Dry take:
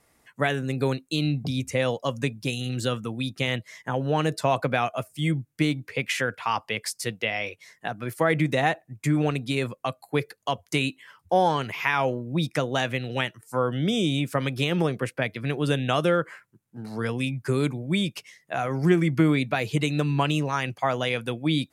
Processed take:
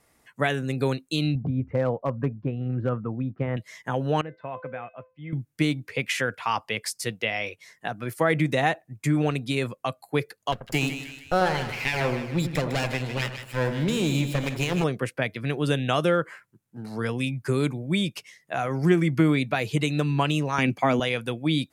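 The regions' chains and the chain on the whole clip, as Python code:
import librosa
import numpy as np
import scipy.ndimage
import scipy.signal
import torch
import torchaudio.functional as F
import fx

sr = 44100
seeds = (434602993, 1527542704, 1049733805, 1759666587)

y = fx.chain(x, sr, fx.lowpass(hz=1500.0, slope=24),
    fx.low_shelf(hz=82.0, db=8.0),
    fx.clip_hard(threshold_db=-16.5), at=(1.35, 3.57))
y = fx.chain(y, sr, fx.lowpass(hz=2300.0, slope=24),
    fx.comb_fb(f0_hz=510.0, decay_s=0.29, harmonics='all', damping=0.0, mix_pct=80), at=(4.21, 5.33))
y = fx.chain(y, sr, fx.lower_of_two(delay_ms=0.4),
    fx.echo_split(split_hz=1600.0, low_ms=86, high_ms=154, feedback_pct=52, wet_db=-8.5), at=(10.52, 14.84))
y = fx.chain(y, sr, fx.small_body(hz=(240.0, 2300.0), ring_ms=20, db=12),
    fx.band_squash(depth_pct=40), at=(20.58, 21.0))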